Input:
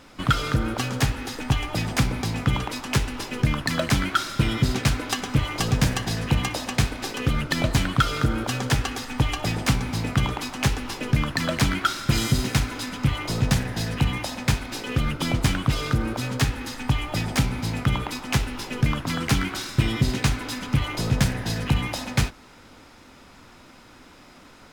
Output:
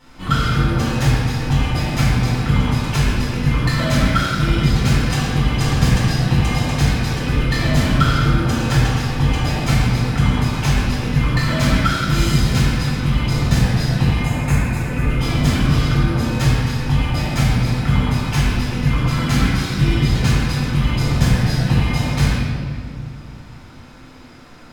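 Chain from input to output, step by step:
gain on a spectral selection 0:14.22–0:15.09, 2,800–6,300 Hz −10 dB
convolution reverb RT60 2.0 s, pre-delay 4 ms, DRR −10.5 dB
level −9.5 dB

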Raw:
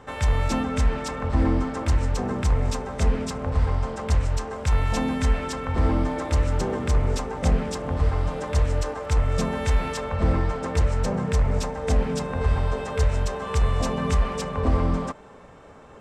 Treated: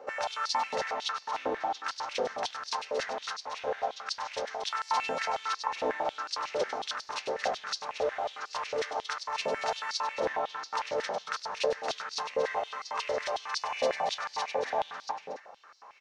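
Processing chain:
formants moved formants −5 semitones
loudspeakers that aren't time-aligned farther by 34 metres −8 dB, 79 metres −9 dB, 97 metres −10 dB
high-pass on a step sequencer 11 Hz 520–4,600 Hz
level −4.5 dB

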